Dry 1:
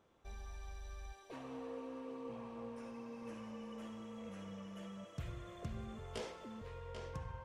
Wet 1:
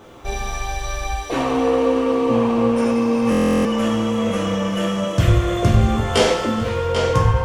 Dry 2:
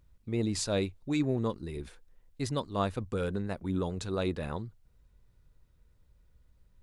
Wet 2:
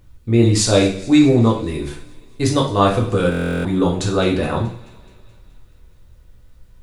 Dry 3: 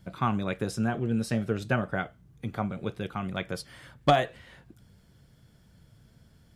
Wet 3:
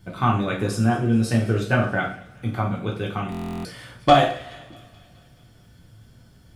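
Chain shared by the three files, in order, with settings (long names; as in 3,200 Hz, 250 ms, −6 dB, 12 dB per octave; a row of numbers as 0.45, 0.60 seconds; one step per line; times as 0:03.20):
delay with a high-pass on its return 213 ms, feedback 62%, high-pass 2,100 Hz, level −20 dB
coupled-rooms reverb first 0.47 s, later 2.5 s, from −26 dB, DRR −2 dB
buffer that repeats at 0:03.30, samples 1,024, times 14
normalise the peak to −1.5 dBFS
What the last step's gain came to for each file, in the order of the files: +25.0, +12.0, +3.0 decibels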